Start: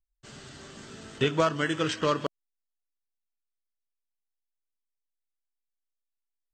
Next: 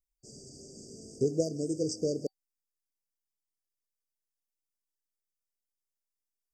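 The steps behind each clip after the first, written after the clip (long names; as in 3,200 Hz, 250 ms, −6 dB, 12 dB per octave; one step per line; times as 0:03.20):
low-shelf EQ 260 Hz −8 dB
brick-wall band-stop 770–4,600 Hz
flat-topped bell 800 Hz −12 dB 1 octave
level +1.5 dB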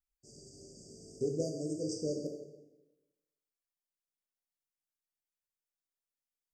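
dense smooth reverb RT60 1.1 s, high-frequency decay 0.75×, DRR 0.5 dB
level −7 dB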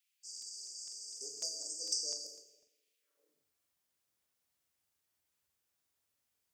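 high-pass filter sweep 2,600 Hz → 69 Hz, 0:02.99–0:03.51
regular buffer underruns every 0.25 s, samples 2,048, repeat, from 0:00.33
every ending faded ahead of time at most 110 dB per second
level +10.5 dB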